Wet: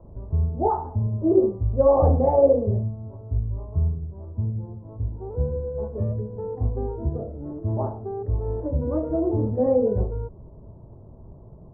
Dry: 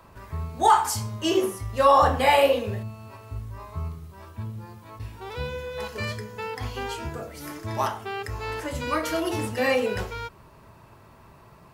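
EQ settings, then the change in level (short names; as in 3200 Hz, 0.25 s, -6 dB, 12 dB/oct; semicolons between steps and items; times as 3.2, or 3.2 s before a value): inverse Chebyshev low-pass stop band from 3700 Hz, stop band 80 dB; low shelf 75 Hz +11.5 dB; +4.5 dB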